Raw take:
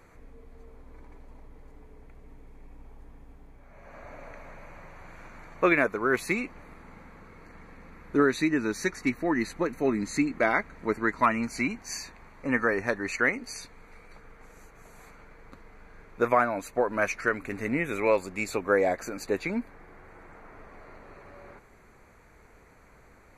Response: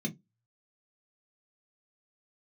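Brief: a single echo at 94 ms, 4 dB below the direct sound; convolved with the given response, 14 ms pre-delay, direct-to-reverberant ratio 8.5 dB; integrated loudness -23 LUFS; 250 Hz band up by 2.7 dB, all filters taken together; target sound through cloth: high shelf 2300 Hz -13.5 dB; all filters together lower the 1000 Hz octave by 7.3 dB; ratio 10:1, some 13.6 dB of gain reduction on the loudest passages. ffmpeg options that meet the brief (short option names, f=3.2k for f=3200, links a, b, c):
-filter_complex "[0:a]equalizer=f=250:t=o:g=4,equalizer=f=1k:t=o:g=-7,acompressor=threshold=-31dB:ratio=10,aecho=1:1:94:0.631,asplit=2[a][b];[1:a]atrim=start_sample=2205,adelay=14[c];[b][c]afir=irnorm=-1:irlink=0,volume=-10dB[d];[a][d]amix=inputs=2:normalize=0,highshelf=f=2.3k:g=-13.5,volume=8dB"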